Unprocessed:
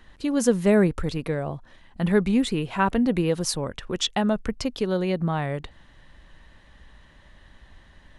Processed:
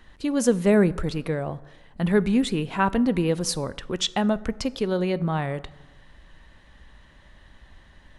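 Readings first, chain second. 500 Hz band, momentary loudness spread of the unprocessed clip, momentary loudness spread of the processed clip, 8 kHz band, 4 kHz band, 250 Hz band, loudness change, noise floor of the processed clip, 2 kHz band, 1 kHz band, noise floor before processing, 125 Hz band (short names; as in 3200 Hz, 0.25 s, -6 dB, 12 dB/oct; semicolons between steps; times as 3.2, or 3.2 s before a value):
0.0 dB, 10 LU, 10 LU, 0.0 dB, 0.0 dB, 0.0 dB, 0.0 dB, -54 dBFS, 0.0 dB, 0.0 dB, -54 dBFS, 0.0 dB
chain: plate-style reverb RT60 1.2 s, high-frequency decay 0.5×, DRR 17 dB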